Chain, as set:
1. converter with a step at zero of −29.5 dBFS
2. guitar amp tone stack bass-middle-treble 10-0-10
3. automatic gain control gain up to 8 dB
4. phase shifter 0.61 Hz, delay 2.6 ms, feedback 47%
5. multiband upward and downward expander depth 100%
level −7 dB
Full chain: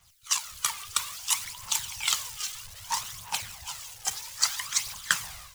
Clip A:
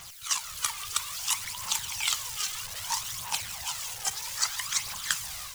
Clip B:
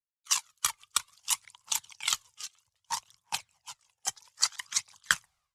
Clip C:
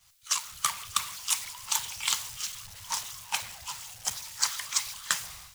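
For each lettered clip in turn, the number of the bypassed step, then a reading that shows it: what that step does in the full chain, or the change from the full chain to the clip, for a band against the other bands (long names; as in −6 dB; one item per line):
5, 500 Hz band +2.0 dB
1, distortion level −4 dB
4, 2 kHz band −1.5 dB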